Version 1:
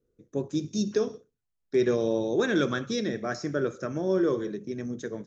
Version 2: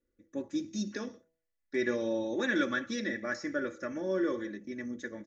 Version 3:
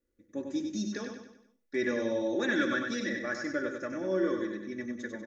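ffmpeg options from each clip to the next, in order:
-af "equalizer=f=1.9k:t=o:w=0.49:g=13.5,aecho=1:1:3.5:0.78,bandreject=f=162.6:t=h:w=4,bandreject=f=325.2:t=h:w=4,bandreject=f=487.8:t=h:w=4,bandreject=f=650.4:t=h:w=4,bandreject=f=813:t=h:w=4,bandreject=f=975.6:t=h:w=4,volume=-8dB"
-af "aecho=1:1:96|192|288|384|480:0.531|0.239|0.108|0.0484|0.0218"

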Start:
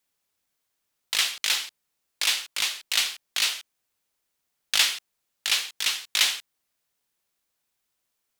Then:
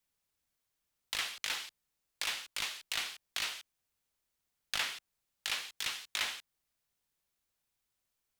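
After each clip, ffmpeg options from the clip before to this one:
-filter_complex "[0:a]acrossover=split=300|2100[a][b][c];[a]lowshelf=f=130:g=10.5[d];[c]acompressor=threshold=-30dB:ratio=6[e];[d][b][e]amix=inputs=3:normalize=0,volume=-6dB"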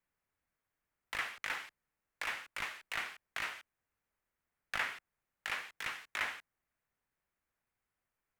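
-af "highshelf=f=2.7k:t=q:w=1.5:g=-11,volume=1dB"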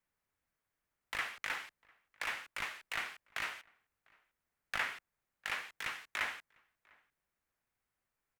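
-filter_complex "[0:a]asplit=2[a][b];[b]adelay=699.7,volume=-27dB,highshelf=f=4k:g=-15.7[c];[a][c]amix=inputs=2:normalize=0"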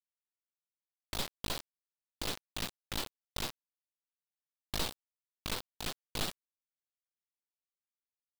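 -af "lowpass=f=3.1k:t=q:w=0.5098,lowpass=f=3.1k:t=q:w=0.6013,lowpass=f=3.1k:t=q:w=0.9,lowpass=f=3.1k:t=q:w=2.563,afreqshift=-3700,aeval=exprs='abs(val(0))':c=same,acrusher=bits=5:mix=0:aa=0.000001,volume=1.5dB"

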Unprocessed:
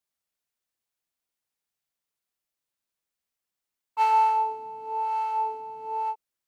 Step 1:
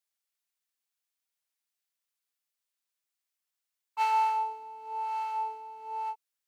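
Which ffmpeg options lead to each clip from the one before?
-af "highpass=f=1.4k:p=1"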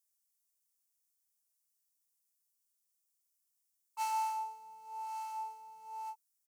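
-af "firequalizer=gain_entry='entry(200,0);entry(320,-24);entry(540,-10);entry(1000,-5);entry(1500,-10);entry(3800,-6);entry(5500,5);entry(8800,9)':delay=0.05:min_phase=1,volume=-2dB"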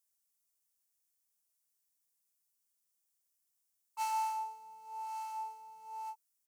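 -af "aeval=exprs='0.0473*(cos(1*acos(clip(val(0)/0.0473,-1,1)))-cos(1*PI/2))+0.000596*(cos(2*acos(clip(val(0)/0.0473,-1,1)))-cos(2*PI/2))':c=same"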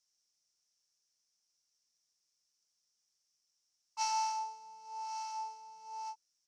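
-af "lowpass=f=5.5k:t=q:w=6"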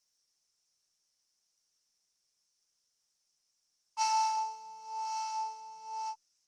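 -af "volume=4.5dB" -ar 48000 -c:a libopus -b:a 24k

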